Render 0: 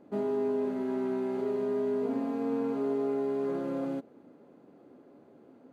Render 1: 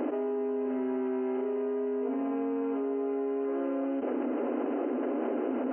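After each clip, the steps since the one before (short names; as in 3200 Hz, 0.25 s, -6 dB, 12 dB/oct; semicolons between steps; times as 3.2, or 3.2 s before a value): FFT band-pass 230–3100 Hz; fast leveller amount 100%; gain -2.5 dB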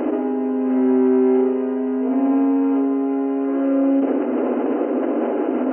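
dark delay 62 ms, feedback 61%, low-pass 1100 Hz, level -4.5 dB; gain +8.5 dB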